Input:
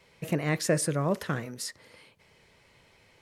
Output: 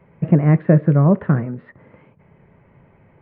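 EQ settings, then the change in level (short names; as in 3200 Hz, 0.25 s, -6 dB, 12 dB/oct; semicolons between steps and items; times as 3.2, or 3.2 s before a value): Gaussian blur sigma 5.2 samples; bell 160 Hz +8.5 dB 1.3 oct; notch 480 Hz, Q 16; +9.0 dB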